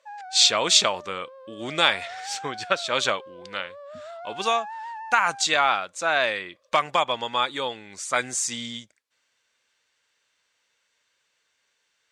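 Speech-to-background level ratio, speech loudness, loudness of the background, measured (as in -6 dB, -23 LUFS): 17.0 dB, -23.5 LUFS, -40.5 LUFS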